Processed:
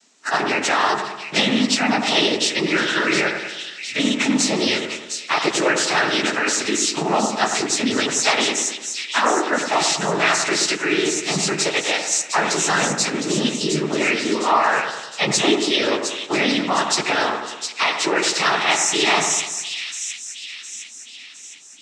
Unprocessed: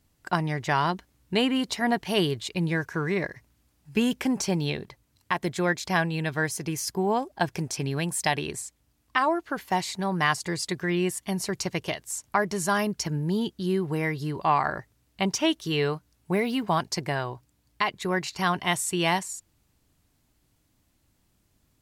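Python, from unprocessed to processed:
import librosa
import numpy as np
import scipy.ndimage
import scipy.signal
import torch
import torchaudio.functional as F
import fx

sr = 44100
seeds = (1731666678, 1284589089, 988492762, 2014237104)

p1 = fx.freq_snap(x, sr, grid_st=2)
p2 = scipy.signal.sosfilt(scipy.signal.cheby1(4, 1.0, 220.0, 'highpass', fs=sr, output='sos'), p1)
p3 = fx.over_compress(p2, sr, threshold_db=-32.0, ratio=-1.0)
p4 = p2 + F.gain(torch.from_numpy(p3), -1.0).numpy()
p5 = fx.rev_double_slope(p4, sr, seeds[0], early_s=0.22, late_s=1.6, knee_db=-18, drr_db=8.0)
p6 = fx.noise_vocoder(p5, sr, seeds[1], bands=12)
p7 = p6 + fx.echo_split(p6, sr, split_hz=2300.0, low_ms=99, high_ms=711, feedback_pct=52, wet_db=-7.0, dry=0)
y = F.gain(torch.from_numpy(p7), 3.5).numpy()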